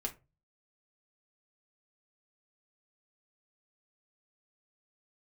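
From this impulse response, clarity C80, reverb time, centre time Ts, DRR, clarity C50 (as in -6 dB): 24.0 dB, 0.25 s, 9 ms, 1.0 dB, 16.0 dB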